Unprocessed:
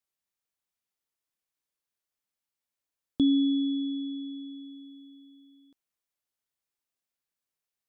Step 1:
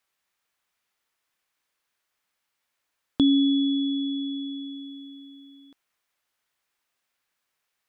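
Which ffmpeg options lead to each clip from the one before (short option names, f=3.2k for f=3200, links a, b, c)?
-filter_complex "[0:a]equalizer=f=1.6k:t=o:w=2.8:g=9.5,asplit=2[a][b];[b]acompressor=threshold=-33dB:ratio=6,volume=0dB[c];[a][c]amix=inputs=2:normalize=0"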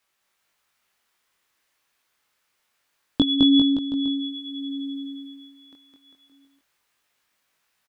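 -af "aecho=1:1:210|399|569.1|722.2|860:0.631|0.398|0.251|0.158|0.1,flanger=delay=19:depth=4.3:speed=0.26,volume=8dB"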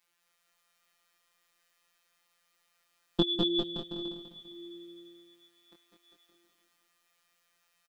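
-af "afftfilt=real='hypot(re,im)*cos(PI*b)':imag='0':win_size=1024:overlap=0.75,aecho=1:1:199|398|597|796|995:0.501|0.205|0.0842|0.0345|0.0142,volume=1.5dB"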